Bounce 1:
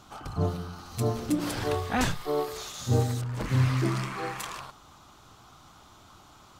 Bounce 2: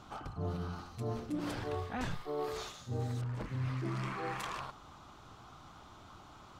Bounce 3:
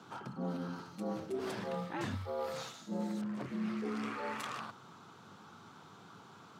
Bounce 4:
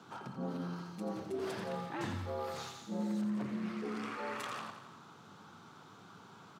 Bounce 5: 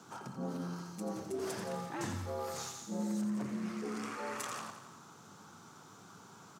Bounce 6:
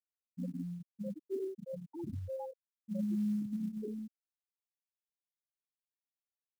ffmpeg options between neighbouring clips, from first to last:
ffmpeg -i in.wav -af "lowpass=frequency=2900:poles=1,areverse,acompressor=threshold=-35dB:ratio=5,areverse" out.wav
ffmpeg -i in.wav -af "afreqshift=88,volume=-1dB" out.wav
ffmpeg -i in.wav -af "aecho=1:1:86|172|258|344|430|516|602:0.376|0.214|0.122|0.0696|0.0397|0.0226|0.0129,volume=-1dB" out.wav
ffmpeg -i in.wav -af "highshelf=frequency=4900:width_type=q:width=1.5:gain=8" out.wav
ffmpeg -i in.wav -af "afftfilt=real='re*gte(hypot(re,im),0.0794)':imag='im*gte(hypot(re,im),0.0794)':win_size=1024:overlap=0.75,acrusher=bits=8:mode=log:mix=0:aa=0.000001,volume=2.5dB" out.wav

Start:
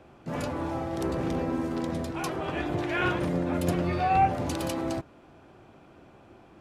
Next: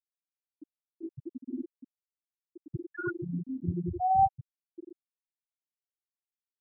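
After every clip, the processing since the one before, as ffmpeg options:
ffmpeg -i in.wav -af "afftfilt=real='re*gte(hypot(re,im),0.316)':imag='im*gte(hypot(re,im),0.316)':win_size=1024:overlap=0.75,highshelf=frequency=2600:width_type=q:width=1.5:gain=8" out.wav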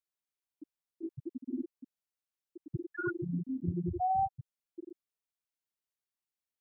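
ffmpeg -i in.wav -af "acompressor=threshold=-28dB:ratio=5" out.wav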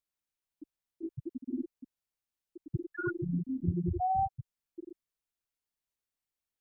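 ffmpeg -i in.wav -af "lowshelf=frequency=87:gain=11.5" out.wav

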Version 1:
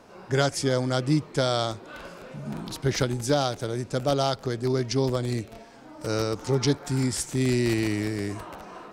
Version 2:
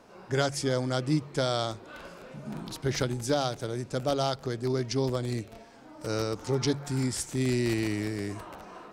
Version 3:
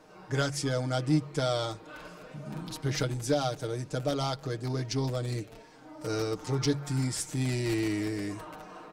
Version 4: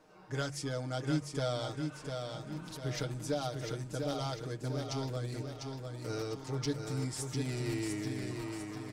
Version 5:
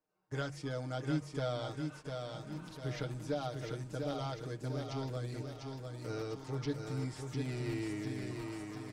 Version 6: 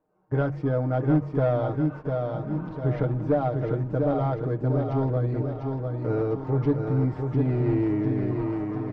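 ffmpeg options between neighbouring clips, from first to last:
ffmpeg -i in.wav -af "bandreject=frequency=47.14:width_type=h:width=4,bandreject=frequency=94.28:width_type=h:width=4,bandreject=frequency=141.42:width_type=h:width=4,volume=-3.5dB" out.wav
ffmpeg -i in.wav -filter_complex "[0:a]asplit=2[link_01][link_02];[link_02]asoftclip=type=hard:threshold=-26.5dB,volume=-8dB[link_03];[link_01][link_03]amix=inputs=2:normalize=0,aecho=1:1:6.5:0.68,volume=-5dB" out.wav
ffmpeg -i in.wav -af "aecho=1:1:699|1398|2097|2796|3495|4194:0.562|0.253|0.114|0.0512|0.0231|0.0104,volume=-7dB" out.wav
ffmpeg -i in.wav -filter_complex "[0:a]acrossover=split=3900[link_01][link_02];[link_02]acompressor=threshold=-54dB:ratio=4:attack=1:release=60[link_03];[link_01][link_03]amix=inputs=2:normalize=0,agate=range=-24dB:threshold=-46dB:ratio=16:detection=peak,volume=-2dB" out.wav
ffmpeg -i in.wav -filter_complex "[0:a]lowpass=1000,asplit=2[link_01][link_02];[link_02]aeval=exprs='0.0631*sin(PI/2*1.78*val(0)/0.0631)':channel_layout=same,volume=-8dB[link_03];[link_01][link_03]amix=inputs=2:normalize=0,volume=8.5dB" out.wav

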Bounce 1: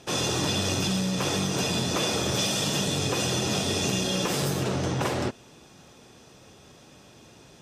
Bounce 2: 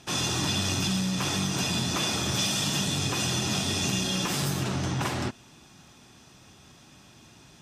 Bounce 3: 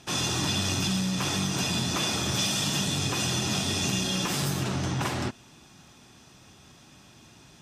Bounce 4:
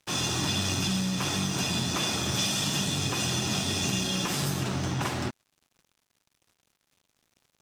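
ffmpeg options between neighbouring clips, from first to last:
ffmpeg -i in.wav -af "equalizer=frequency=490:width=2:gain=-11" out.wav
ffmpeg -i in.wav -af anull out.wav
ffmpeg -i in.wav -af "aeval=exprs='sgn(val(0))*max(abs(val(0))-0.00447,0)':channel_layout=same" out.wav

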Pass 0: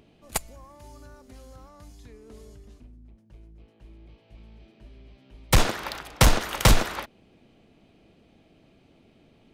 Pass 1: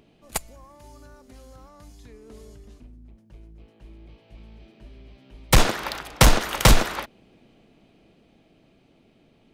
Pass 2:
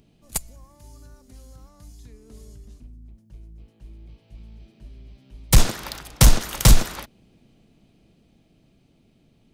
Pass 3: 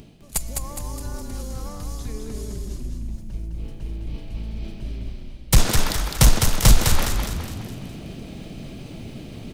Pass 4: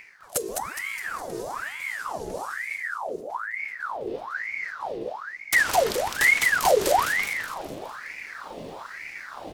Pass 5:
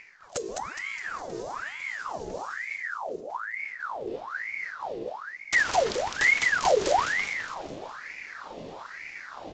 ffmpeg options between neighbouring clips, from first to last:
ffmpeg -i in.wav -af "equalizer=frequency=81:width=4:gain=-8,dynaudnorm=framelen=280:gausssize=17:maxgain=4dB" out.wav
ffmpeg -i in.wav -af "bass=frequency=250:gain=10,treble=frequency=4000:gain=10,volume=-6.5dB" out.wav
ffmpeg -i in.wav -filter_complex "[0:a]areverse,acompressor=mode=upward:threshold=-17dB:ratio=2.5,areverse,asplit=7[link_01][link_02][link_03][link_04][link_05][link_06][link_07];[link_02]adelay=207,afreqshift=-31,volume=-4.5dB[link_08];[link_03]adelay=414,afreqshift=-62,volume=-10.9dB[link_09];[link_04]adelay=621,afreqshift=-93,volume=-17.3dB[link_10];[link_05]adelay=828,afreqshift=-124,volume=-23.6dB[link_11];[link_06]adelay=1035,afreqshift=-155,volume=-30dB[link_12];[link_07]adelay=1242,afreqshift=-186,volume=-36.4dB[link_13];[link_01][link_08][link_09][link_10][link_11][link_12][link_13]amix=inputs=7:normalize=0,volume=-1dB" out.wav
ffmpeg -i in.wav -af "alimiter=limit=-8.5dB:level=0:latency=1:release=294,aeval=exprs='val(0)*sin(2*PI*1300*n/s+1300*0.7/1.1*sin(2*PI*1.1*n/s))':channel_layout=same" out.wav
ffmpeg -i in.wav -af "volume=-2.5dB" -ar 16000 -c:a pcm_mulaw out.wav

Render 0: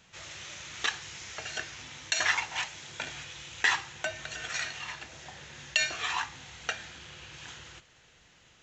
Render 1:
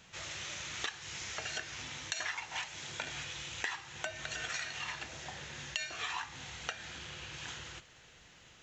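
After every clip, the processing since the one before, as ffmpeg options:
ffmpeg -i in.wav -af "acompressor=threshold=-37dB:ratio=6,volume=1.5dB" out.wav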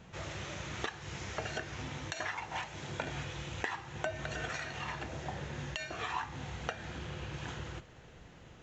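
ffmpeg -i in.wav -af "tiltshelf=frequency=1400:gain=9,volume=1.5dB" out.wav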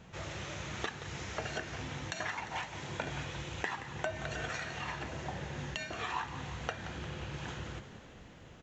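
ffmpeg -i in.wav -filter_complex "[0:a]asplit=8[link_01][link_02][link_03][link_04][link_05][link_06][link_07][link_08];[link_02]adelay=175,afreqshift=37,volume=-12.5dB[link_09];[link_03]adelay=350,afreqshift=74,volume=-16.5dB[link_10];[link_04]adelay=525,afreqshift=111,volume=-20.5dB[link_11];[link_05]adelay=700,afreqshift=148,volume=-24.5dB[link_12];[link_06]adelay=875,afreqshift=185,volume=-28.6dB[link_13];[link_07]adelay=1050,afreqshift=222,volume=-32.6dB[link_14];[link_08]adelay=1225,afreqshift=259,volume=-36.6dB[link_15];[link_01][link_09][link_10][link_11][link_12][link_13][link_14][link_15]amix=inputs=8:normalize=0" out.wav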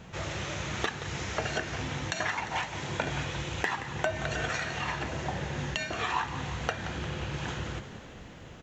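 ffmpeg -i in.wav -af "volume=19dB,asoftclip=hard,volume=-19dB,volume=6.5dB" out.wav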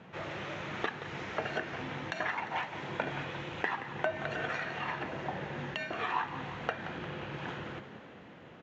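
ffmpeg -i in.wav -af "highpass=170,lowpass=2700,volume=-2dB" out.wav

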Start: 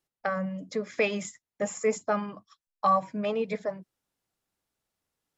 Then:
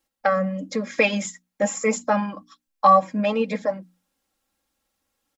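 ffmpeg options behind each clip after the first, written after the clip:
ffmpeg -i in.wav -af "bandreject=frequency=60:width_type=h:width=6,bandreject=frequency=120:width_type=h:width=6,bandreject=frequency=180:width_type=h:width=6,bandreject=frequency=240:width_type=h:width=6,bandreject=frequency=300:width_type=h:width=6,aecho=1:1:3.7:0.78,volume=6dB" out.wav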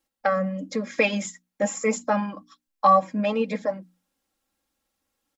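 ffmpeg -i in.wav -af "equalizer=frequency=300:width=1.5:gain=2,volume=-2.5dB" out.wav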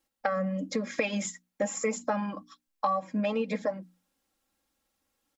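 ffmpeg -i in.wav -af "acompressor=threshold=-25dB:ratio=8" out.wav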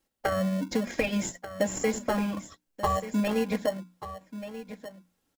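ffmpeg -i in.wav -filter_complex "[0:a]aecho=1:1:1185:0.224,asplit=2[link_01][link_02];[link_02]acrusher=samples=36:mix=1:aa=0.000001,volume=-5.5dB[link_03];[link_01][link_03]amix=inputs=2:normalize=0" out.wav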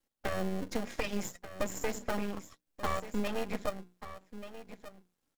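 ffmpeg -i in.wav -af "aeval=exprs='max(val(0),0)':channel_layout=same,volume=-2.5dB" out.wav

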